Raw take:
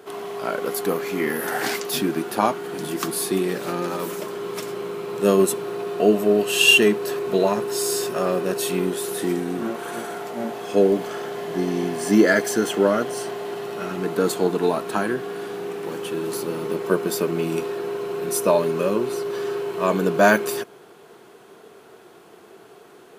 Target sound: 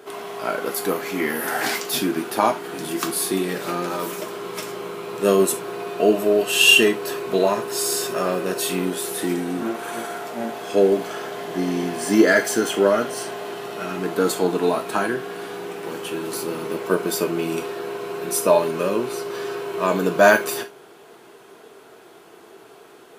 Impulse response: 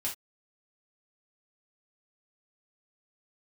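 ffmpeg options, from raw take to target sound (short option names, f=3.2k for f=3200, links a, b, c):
-filter_complex "[0:a]asplit=2[a][b];[b]highpass=f=370:p=1[c];[1:a]atrim=start_sample=2205[d];[c][d]afir=irnorm=-1:irlink=0,volume=-3.5dB[e];[a][e]amix=inputs=2:normalize=0,volume=-2dB"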